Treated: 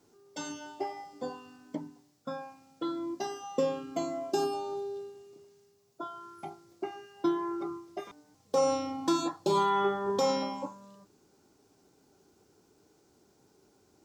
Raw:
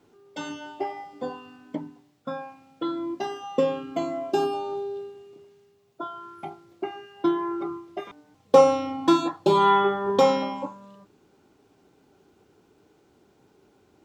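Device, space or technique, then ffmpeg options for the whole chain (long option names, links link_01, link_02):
over-bright horn tweeter: -af "highshelf=frequency=4100:width_type=q:width=1.5:gain=7.5,alimiter=limit=-13dB:level=0:latency=1:release=77,volume=-5dB"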